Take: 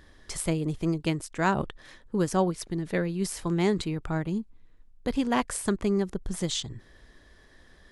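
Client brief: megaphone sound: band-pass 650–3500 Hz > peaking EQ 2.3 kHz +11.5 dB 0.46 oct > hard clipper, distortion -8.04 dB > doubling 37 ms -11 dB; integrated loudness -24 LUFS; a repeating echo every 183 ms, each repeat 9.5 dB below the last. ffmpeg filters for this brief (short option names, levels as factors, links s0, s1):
-filter_complex "[0:a]highpass=650,lowpass=3500,equalizer=f=2300:t=o:w=0.46:g=11.5,aecho=1:1:183|366|549|732:0.335|0.111|0.0365|0.012,asoftclip=type=hard:threshold=0.0562,asplit=2[s0][s1];[s1]adelay=37,volume=0.282[s2];[s0][s2]amix=inputs=2:normalize=0,volume=3.76"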